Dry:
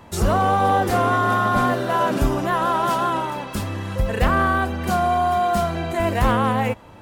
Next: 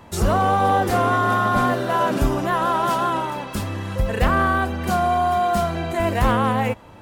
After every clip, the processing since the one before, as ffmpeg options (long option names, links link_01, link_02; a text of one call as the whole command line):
ffmpeg -i in.wav -af anull out.wav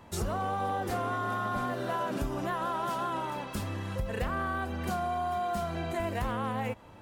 ffmpeg -i in.wav -af "acompressor=threshold=-21dB:ratio=6,volume=-7.5dB" out.wav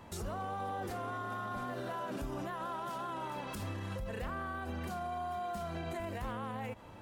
ffmpeg -i in.wav -af "alimiter=level_in=7.5dB:limit=-24dB:level=0:latency=1:release=82,volume=-7.5dB" out.wav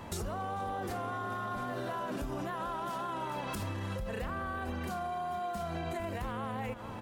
ffmpeg -i in.wav -filter_complex "[0:a]asplit=2[link_01][link_02];[link_02]adelay=443.1,volume=-13dB,highshelf=frequency=4000:gain=-9.97[link_03];[link_01][link_03]amix=inputs=2:normalize=0,acompressor=threshold=-41dB:ratio=6,volume=7.5dB" out.wav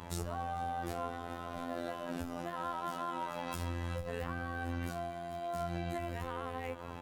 ffmpeg -i in.wav -af "volume=30.5dB,asoftclip=hard,volume=-30.5dB,afftfilt=real='hypot(re,im)*cos(PI*b)':imag='0':win_size=2048:overlap=0.75,volume=1.5dB" out.wav